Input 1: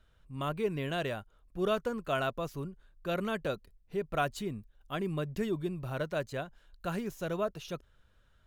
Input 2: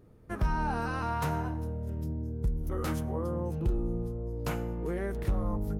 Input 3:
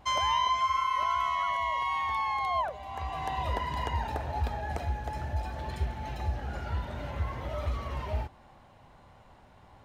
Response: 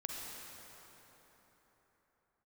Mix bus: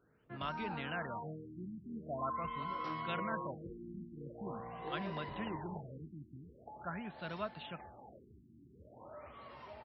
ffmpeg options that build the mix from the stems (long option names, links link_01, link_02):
-filter_complex "[0:a]equalizer=frequency=430:width=1.2:gain=-14.5,acrossover=split=200|3000[link_01][link_02][link_03];[link_01]acompressor=threshold=-47dB:ratio=6[link_04];[link_04][link_02][link_03]amix=inputs=3:normalize=0,volume=-1.5dB[link_05];[1:a]lowshelf=frequency=250:gain=-4.5,flanger=delay=18.5:depth=3.6:speed=0.64,volume=-11dB,asplit=2[link_06][link_07];[link_07]volume=-4.5dB[link_08];[2:a]lowshelf=frequency=180:gain=-9.5,acompressor=mode=upward:threshold=-34dB:ratio=2.5,adelay=1600,volume=-15.5dB,asplit=2[link_09][link_10];[link_10]volume=-7dB[link_11];[3:a]atrim=start_sample=2205[link_12];[link_08][link_11]amix=inputs=2:normalize=0[link_13];[link_13][link_12]afir=irnorm=-1:irlink=0[link_14];[link_05][link_06][link_09][link_14]amix=inputs=4:normalize=0,highpass=140,afftfilt=real='re*lt(b*sr/1024,350*pow(5800/350,0.5+0.5*sin(2*PI*0.44*pts/sr)))':imag='im*lt(b*sr/1024,350*pow(5800/350,0.5+0.5*sin(2*PI*0.44*pts/sr)))':win_size=1024:overlap=0.75"